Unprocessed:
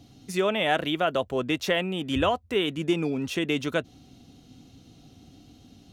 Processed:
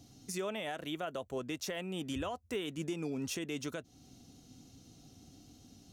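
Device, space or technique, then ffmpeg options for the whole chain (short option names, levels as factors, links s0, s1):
over-bright horn tweeter: -filter_complex "[0:a]asettb=1/sr,asplit=3[s0][s1][s2];[s0]atrim=end=0.844[s3];[s1]atrim=start=0.84:end=1.37,asetpts=PTS-STARTPTS,afade=t=in:d=0.004:c=qsin,afade=t=out:st=0.526:d=0.004:c=qsin,bandreject=f=5000:w=5.3[s4];[s2]atrim=start=1.366[s5];[s3][s4]acrossfade=d=0.004:c1=hsin:c2=qsin[s6];[s6][s5]acrossfade=d=0.004:c1=qsin:c2=hsin,highshelf=f=4500:t=q:w=1.5:g=6.5,alimiter=limit=0.0794:level=0:latency=1:release=301,volume=0.501"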